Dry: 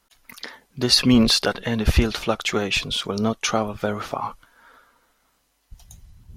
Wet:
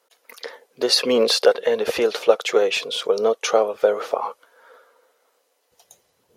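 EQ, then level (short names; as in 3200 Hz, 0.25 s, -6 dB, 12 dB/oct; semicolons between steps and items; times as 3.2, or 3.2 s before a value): resonant high-pass 480 Hz, resonance Q 5.4; -1.5 dB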